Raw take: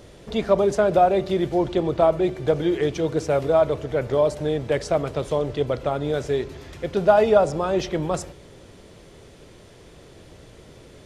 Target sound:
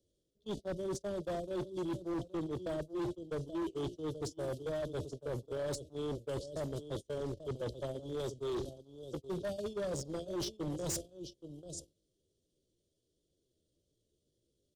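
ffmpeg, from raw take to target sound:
-filter_complex "[0:a]acrossover=split=250|3000[s0][s1][s2];[s1]acompressor=threshold=0.0794:ratio=10[s3];[s0][s3][s2]amix=inputs=3:normalize=0,asetrate=42336,aresample=44100,asuperstop=centerf=1400:order=12:qfactor=0.58,areverse,acompressor=threshold=0.0282:ratio=12,areverse,agate=range=0.02:threshold=0.02:ratio=16:detection=peak,highshelf=f=4200:g=9,aecho=1:1:649:0.224,atempo=0.78,equalizer=f=330:t=o:w=0.41:g=4,volume=42.2,asoftclip=hard,volume=0.0237,volume=0.891"

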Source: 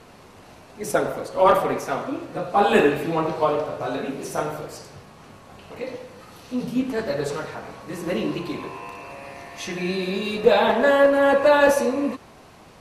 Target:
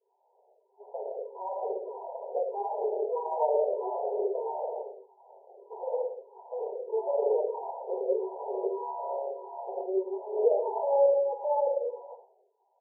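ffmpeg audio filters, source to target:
-filter_complex "[0:a]acompressor=threshold=0.0398:ratio=2.5,alimiter=limit=0.0794:level=0:latency=1:release=87,aemphasis=mode=production:type=75fm,aecho=1:1:61|122|183|244|305|366:0.158|0.0919|0.0533|0.0309|0.0179|0.0104,agate=range=0.0224:threshold=0.0158:ratio=3:detection=peak,dynaudnorm=f=230:g=17:m=3.98,afftfilt=real='re*between(b*sr/4096,370,1000)':imag='im*between(b*sr/4096,370,1000)':win_size=4096:overlap=0.75,asplit=2[s0][s1];[s1]afreqshift=-1.6[s2];[s0][s2]amix=inputs=2:normalize=1,volume=0.794"

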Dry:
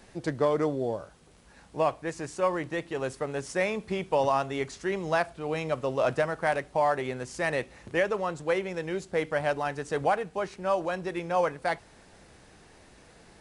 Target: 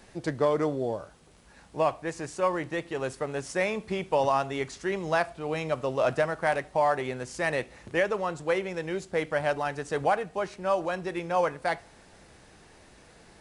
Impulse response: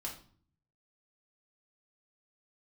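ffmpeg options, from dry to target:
-filter_complex "[0:a]asplit=2[s0][s1];[s1]highpass=420[s2];[1:a]atrim=start_sample=2205,asetrate=40131,aresample=44100[s3];[s2][s3]afir=irnorm=-1:irlink=0,volume=0.15[s4];[s0][s4]amix=inputs=2:normalize=0"

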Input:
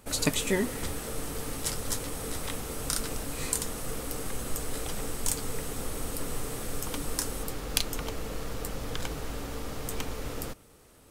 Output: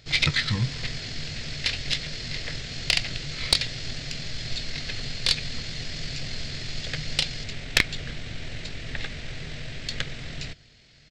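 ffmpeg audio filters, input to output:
-af "asetrate=23361,aresample=44100,atempo=1.88775,equalizer=f=125:t=o:w=1:g=8,equalizer=f=250:t=o:w=1:g=-8,equalizer=f=500:t=o:w=1:g=3,equalizer=f=1000:t=o:w=1:g=-11,equalizer=f=2000:t=o:w=1:g=11,equalizer=f=4000:t=o:w=1:g=8,equalizer=f=8000:t=o:w=1:g=-6,aeval=exprs='0.501*(cos(1*acos(clip(val(0)/0.501,-1,1)))-cos(1*PI/2))+0.178*(cos(2*acos(clip(val(0)/0.501,-1,1)))-cos(2*PI/2))+0.0158*(cos(4*acos(clip(val(0)/0.501,-1,1)))-cos(4*PI/2))':c=same"

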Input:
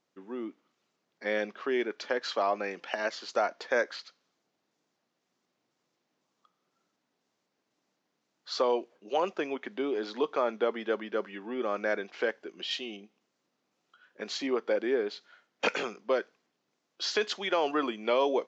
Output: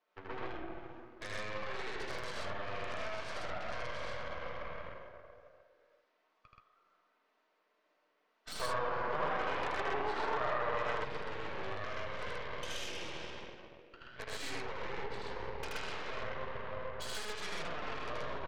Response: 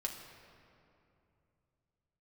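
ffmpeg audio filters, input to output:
-filter_complex "[0:a]bandreject=f=820:w=12[s0];[1:a]atrim=start_sample=2205[s1];[s0][s1]afir=irnorm=-1:irlink=0,alimiter=level_in=1.12:limit=0.0631:level=0:latency=1:release=152,volume=0.891,highpass=600,lowpass=2400,acompressor=threshold=0.00282:ratio=8,aeval=exprs='0.0106*(cos(1*acos(clip(val(0)/0.0106,-1,1)))-cos(1*PI/2))+0.00335*(cos(6*acos(clip(val(0)/0.0106,-1,1)))-cos(6*PI/2))+0.000335*(cos(7*acos(clip(val(0)/0.0106,-1,1)))-cos(7*PI/2))':c=same,asettb=1/sr,asplit=3[s2][s3][s4];[s2]atrim=end=8.614[s5];[s3]atrim=start=8.61:end=10.91,asetpts=PTS-STARTPTS,afade=t=in:d=0.004:c=qsin,afade=t=out:st=2.296:d=0.004:c=qsin,equalizer=f=1000:t=o:w=2.4:g=9[s6];[s4]atrim=start=10.906[s7];[s5][s6]acrossfade=d=0.004:c1=hsin:c2=qsin[s8];[s8][s7]acrossfade=d=0.004:c1=qsin:c2=hsin,aecho=1:1:78.72|128.3:0.891|1,volume=1.88"

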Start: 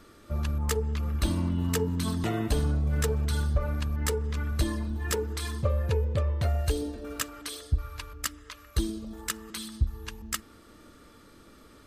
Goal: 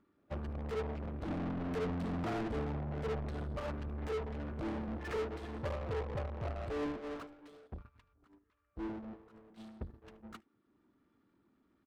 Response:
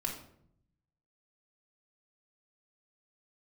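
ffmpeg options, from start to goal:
-filter_complex "[0:a]lowshelf=f=95:g=-6.5,acompressor=mode=upward:threshold=0.00631:ratio=2.5,bass=f=250:g=5,treble=f=4000:g=-12,asoftclip=type=tanh:threshold=0.0562,aecho=1:1:75:0.141,acompressor=threshold=0.0251:ratio=4,afwtdn=0.0112,asetnsamples=n=441:p=0,asendcmd='8.16 lowpass f 1100;9.56 lowpass f 3300',asplit=2[s0][s1];[s1]highpass=f=720:p=1,volume=56.2,asoftclip=type=tanh:threshold=0.0422[s2];[s0][s2]amix=inputs=2:normalize=0,lowpass=f=2500:p=1,volume=0.501,agate=range=0.0141:threshold=0.0251:ratio=16:detection=peak,volume=1.26"

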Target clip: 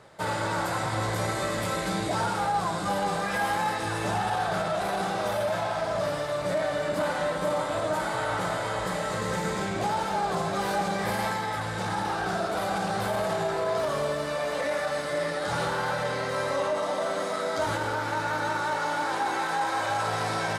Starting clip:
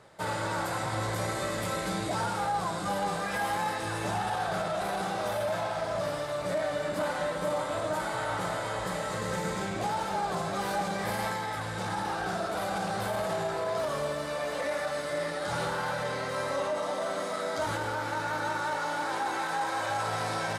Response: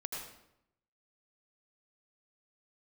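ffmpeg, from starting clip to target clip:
-filter_complex "[0:a]asplit=2[s0][s1];[1:a]atrim=start_sample=2205,lowpass=8800[s2];[s1][s2]afir=irnorm=-1:irlink=0,volume=0.282[s3];[s0][s3]amix=inputs=2:normalize=0,volume=1.19"

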